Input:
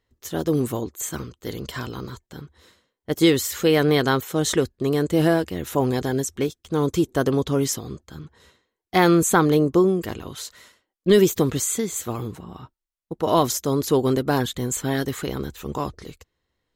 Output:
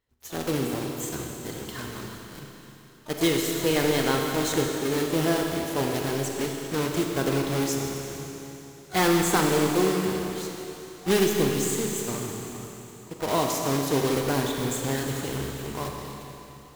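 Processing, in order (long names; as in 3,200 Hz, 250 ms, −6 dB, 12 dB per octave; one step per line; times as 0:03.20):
one scale factor per block 3 bits
pitch-shifted copies added +12 semitones −18 dB
four-comb reverb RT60 3.4 s, combs from 29 ms, DRR 1 dB
level −7 dB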